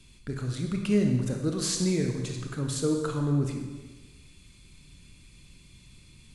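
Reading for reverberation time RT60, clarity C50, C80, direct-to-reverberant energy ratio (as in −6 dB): 1.3 s, 4.5 dB, 6.5 dB, 2.5 dB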